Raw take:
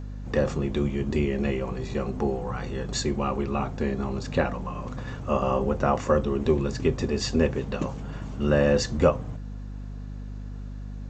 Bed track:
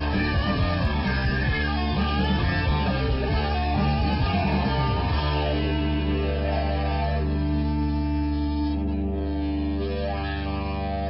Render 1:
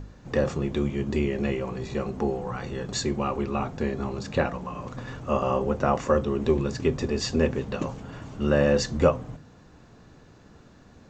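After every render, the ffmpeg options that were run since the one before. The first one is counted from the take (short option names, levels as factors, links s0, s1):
-af "bandreject=f=50:t=h:w=4,bandreject=f=100:t=h:w=4,bandreject=f=150:t=h:w=4,bandreject=f=200:t=h:w=4,bandreject=f=250:t=h:w=4"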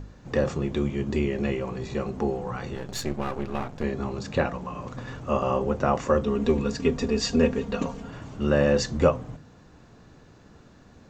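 -filter_complex "[0:a]asettb=1/sr,asplit=3[s0][s1][s2];[s0]atrim=end=2.754[s3];[s1]atrim=start=2.75:end=3.84,asetpts=PTS-STARTPTS,afade=t=in:d=0.004:c=qsin,afade=t=out:st=1.086:d=0.004:c=qsin,aeval=exprs='if(lt(val(0),0),0.251*val(0),val(0))':c=same[s4];[s2]atrim=start=3.836[s5];[s3][s4]acrossfade=d=0.004:c1=hsin:c2=qsin[s6];[s6][s5]acrossfade=d=0.004:c1=qsin:c2=hsin,asettb=1/sr,asplit=3[s7][s8][s9];[s7]atrim=end=6.234[s10];[s8]atrim=start=6.23:end=8.09,asetpts=PTS-STARTPTS,afade=t=in:d=0.004:c=qsin,afade=t=out:st=1.856:d=0.004:c=qsin,aecho=1:1:4.3:0.65,atrim=end_sample=82026[s11];[s9]atrim=start=8.086[s12];[s10][s11]acrossfade=d=0.004:c1=hsin:c2=qsin[s13];[s13][s12]acrossfade=d=0.004:c1=qsin:c2=hsin"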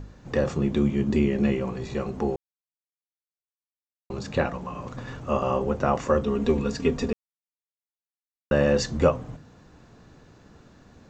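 -filter_complex "[0:a]asettb=1/sr,asplit=3[s0][s1][s2];[s0]atrim=end=0.574[s3];[s1]atrim=start=0.57:end=1.71,asetpts=PTS-STARTPTS,afade=t=in:d=0.004:c=qsin,afade=t=out:st=1.136:d=0.004:c=qsin,equalizer=f=210:w=1.5:g=6.5[s4];[s2]atrim=start=1.706[s5];[s3][s4]acrossfade=d=0.004:c1=hsin:c2=qsin[s6];[s6][s5]acrossfade=d=0.004:c1=qsin:c2=hsin,asplit=5[s7][s8][s9][s10][s11];[s7]atrim=end=2.36,asetpts=PTS-STARTPTS,afade=t=out:st=2.356:d=0.004:c=hsin[s12];[s8]atrim=start=2.36:end=4.1,asetpts=PTS-STARTPTS,volume=0[s13];[s9]atrim=start=4.1:end=7.13,asetpts=PTS-STARTPTS,afade=t=in:d=0.004:c=hsin,afade=t=out:st=3.026:d=0.004:c=hsin[s14];[s10]atrim=start=7.13:end=8.51,asetpts=PTS-STARTPTS,volume=0[s15];[s11]atrim=start=8.51,asetpts=PTS-STARTPTS,afade=t=in:d=0.004:c=hsin[s16];[s12][s13][s14][s15][s16]concat=n=5:v=0:a=1"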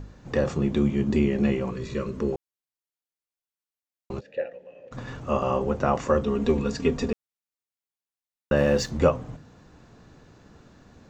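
-filter_complex "[0:a]asettb=1/sr,asplit=3[s0][s1][s2];[s0]atrim=end=1.714[s3];[s1]atrim=start=1.71:end=2.33,asetpts=PTS-STARTPTS,afade=t=in:d=0.004:c=qsin,afade=t=out:st=0.616:d=0.004:c=qsin,asuperstop=centerf=770:order=4:qfactor=2.4[s4];[s2]atrim=start=2.326[s5];[s3][s4]acrossfade=d=0.004:c1=hsin:c2=qsin[s6];[s6][s5]acrossfade=d=0.004:c1=qsin:c2=hsin,asplit=3[s7][s8][s9];[s7]afade=t=out:st=4.19:d=0.02[s10];[s8]asplit=3[s11][s12][s13];[s11]bandpass=f=530:t=q:w=8,volume=1[s14];[s12]bandpass=f=1840:t=q:w=8,volume=0.501[s15];[s13]bandpass=f=2480:t=q:w=8,volume=0.355[s16];[s14][s15][s16]amix=inputs=3:normalize=0,afade=t=in:st=4.19:d=0.02,afade=t=out:st=4.91:d=0.02[s17];[s9]afade=t=in:st=4.91:d=0.02[s18];[s10][s17][s18]amix=inputs=3:normalize=0,asettb=1/sr,asplit=3[s19][s20][s21];[s19]atrim=end=8.574[s22];[s20]atrim=start=8.57:end=8.99,asetpts=PTS-STARTPTS,afade=t=in:d=0.004:c=qsin,afade=t=out:st=0.416:d=0.004:c=qsin,aeval=exprs='sgn(val(0))*max(abs(val(0))-0.00501,0)':c=same[s23];[s21]atrim=start=8.986[s24];[s22][s23]acrossfade=d=0.004:c1=hsin:c2=qsin[s25];[s25][s24]acrossfade=d=0.004:c1=qsin:c2=hsin"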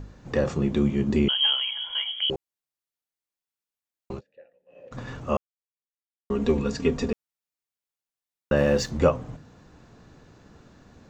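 -filter_complex "[0:a]asettb=1/sr,asplit=3[s0][s1][s2];[s0]atrim=end=1.284[s3];[s1]atrim=start=1.28:end=2.3,asetpts=PTS-STARTPTS,afade=t=in:d=0.004:c=qsin,afade=t=out:st=1.016:d=0.004:c=qsin,lowpass=f=2900:t=q:w=0.5098,lowpass=f=2900:t=q:w=0.6013,lowpass=f=2900:t=q:w=0.9,lowpass=f=2900:t=q:w=2.563,afreqshift=-3400[s4];[s2]atrim=start=2.296[s5];[s3][s4]acrossfade=d=0.004:c1=hsin:c2=qsin[s6];[s6][s5]acrossfade=d=0.004:c1=qsin:c2=hsin,asplit=5[s7][s8][s9][s10][s11];[s7]atrim=end=4.25,asetpts=PTS-STARTPTS,afade=t=out:st=4.12:d=0.13:silence=0.0841395[s12];[s8]atrim=start=4.25:end=4.66,asetpts=PTS-STARTPTS,volume=0.0841[s13];[s9]atrim=start=4.66:end=5.37,asetpts=PTS-STARTPTS,afade=t=in:d=0.13:silence=0.0841395,afade=t=out:st=0.706:d=0.004:c=hsin[s14];[s10]atrim=start=5.37:end=6.3,asetpts=PTS-STARTPTS,volume=0[s15];[s11]atrim=start=6.3,asetpts=PTS-STARTPTS,afade=t=in:d=0.004:c=hsin[s16];[s12][s13][s14][s15][s16]concat=n=5:v=0:a=1"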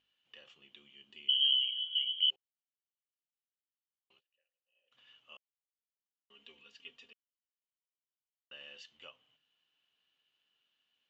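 -af "bandpass=f=3000:t=q:w=17:csg=0"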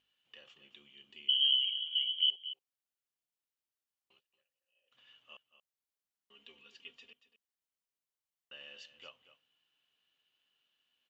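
-af "aecho=1:1:231:0.211"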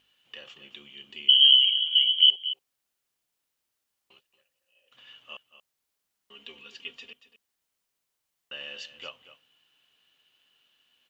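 -af "volume=3.76"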